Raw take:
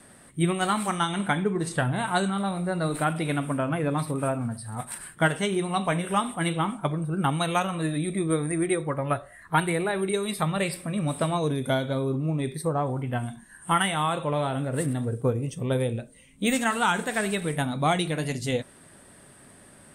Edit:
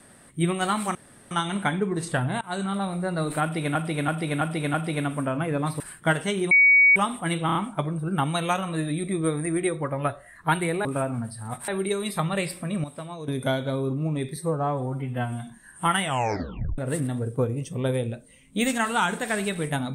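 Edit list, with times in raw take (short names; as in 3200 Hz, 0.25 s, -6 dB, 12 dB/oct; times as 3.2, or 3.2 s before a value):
0.95 insert room tone 0.36 s
2.05–2.33 fade in, from -24 dB
3.06–3.39 loop, 5 plays
4.12–4.95 move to 9.91
5.66–6.11 bleep 2250 Hz -12.5 dBFS
6.61 stutter 0.03 s, 4 plays
11.07–11.51 gain -11 dB
12.59–13.33 stretch 1.5×
13.9 tape stop 0.74 s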